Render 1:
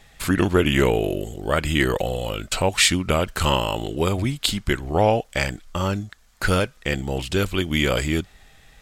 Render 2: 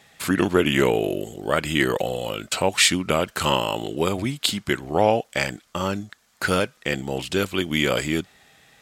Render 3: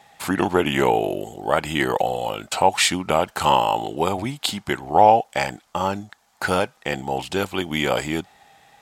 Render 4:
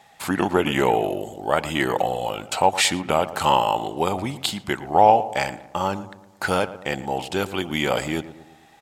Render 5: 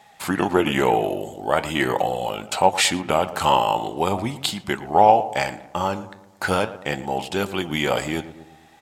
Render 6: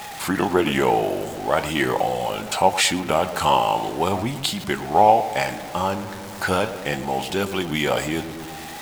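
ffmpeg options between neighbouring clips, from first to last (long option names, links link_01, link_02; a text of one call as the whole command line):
ffmpeg -i in.wav -af "highpass=150" out.wav
ffmpeg -i in.wav -af "equalizer=frequency=820:width=2.4:gain=13.5,volume=-2dB" out.wav
ffmpeg -i in.wav -filter_complex "[0:a]asplit=2[link_01][link_02];[link_02]adelay=114,lowpass=frequency=1500:poles=1,volume=-14dB,asplit=2[link_03][link_04];[link_04]adelay=114,lowpass=frequency=1500:poles=1,volume=0.52,asplit=2[link_05][link_06];[link_06]adelay=114,lowpass=frequency=1500:poles=1,volume=0.52,asplit=2[link_07][link_08];[link_08]adelay=114,lowpass=frequency=1500:poles=1,volume=0.52,asplit=2[link_09][link_10];[link_10]adelay=114,lowpass=frequency=1500:poles=1,volume=0.52[link_11];[link_01][link_03][link_05][link_07][link_09][link_11]amix=inputs=6:normalize=0,volume=-1dB" out.wav
ffmpeg -i in.wav -af "flanger=delay=4.7:depth=7.9:regen=78:speed=0.41:shape=sinusoidal,volume=5dB" out.wav
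ffmpeg -i in.wav -af "aeval=exprs='val(0)+0.5*0.0355*sgn(val(0))':channel_layout=same,volume=-1dB" out.wav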